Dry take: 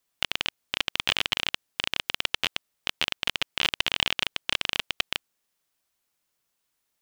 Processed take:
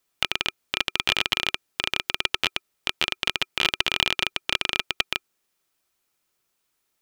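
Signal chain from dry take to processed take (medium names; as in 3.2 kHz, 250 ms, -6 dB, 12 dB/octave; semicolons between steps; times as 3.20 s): small resonant body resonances 370/1300/2400 Hz, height 6 dB, ringing for 40 ms; trim +2.5 dB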